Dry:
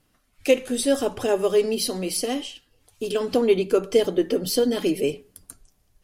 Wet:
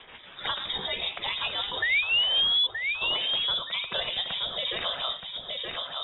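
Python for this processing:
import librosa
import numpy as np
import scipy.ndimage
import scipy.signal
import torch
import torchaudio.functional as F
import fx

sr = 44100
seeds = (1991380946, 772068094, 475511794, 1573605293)

p1 = fx.spec_gate(x, sr, threshold_db=-15, keep='weak')
p2 = fx.low_shelf(p1, sr, hz=160.0, db=7.5)
p3 = fx.over_compress(p2, sr, threshold_db=-40.0, ratio=-1.0)
p4 = p2 + (p3 * librosa.db_to_amplitude(-1.0))
p5 = fx.spec_paint(p4, sr, seeds[0], shape='fall', start_s=1.82, length_s=0.85, low_hz=260.0, high_hz=2000.0, level_db=-19.0)
p6 = fx.rotary_switch(p5, sr, hz=6.0, then_hz=1.1, switch_at_s=1.81)
p7 = fx.doubler(p6, sr, ms=16.0, db=-5.5, at=(0.58, 1.19))
p8 = p7 + fx.echo_feedback(p7, sr, ms=923, feedback_pct=20, wet_db=-8.0, dry=0)
p9 = fx.freq_invert(p8, sr, carrier_hz=3700)
y = fx.band_squash(p9, sr, depth_pct=70)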